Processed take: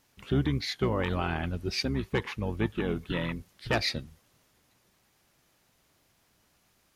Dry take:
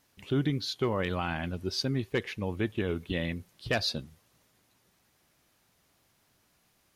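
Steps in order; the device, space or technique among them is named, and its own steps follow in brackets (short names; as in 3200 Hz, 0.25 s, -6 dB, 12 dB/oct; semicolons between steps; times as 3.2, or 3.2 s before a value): octave pedal (harmoniser -12 st -5 dB)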